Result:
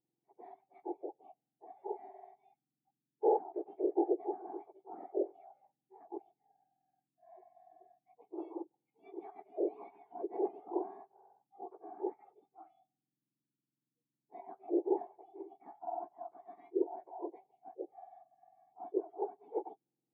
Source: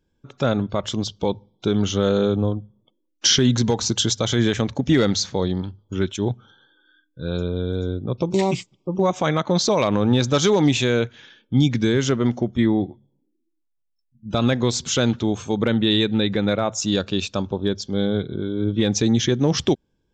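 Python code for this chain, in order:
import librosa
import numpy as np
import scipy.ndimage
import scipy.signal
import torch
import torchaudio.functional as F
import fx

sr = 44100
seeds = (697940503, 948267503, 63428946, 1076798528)

y = fx.octave_mirror(x, sr, pivot_hz=1600.0)
y = fx.formant_cascade(y, sr, vowel='u')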